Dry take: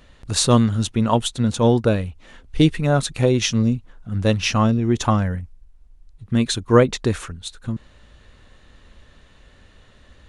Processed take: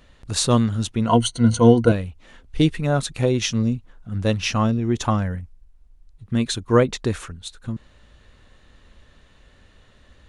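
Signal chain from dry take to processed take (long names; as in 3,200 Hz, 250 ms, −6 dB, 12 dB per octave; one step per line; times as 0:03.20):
0:01.07–0:01.92: EQ curve with evenly spaced ripples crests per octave 1.9, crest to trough 16 dB
level −2.5 dB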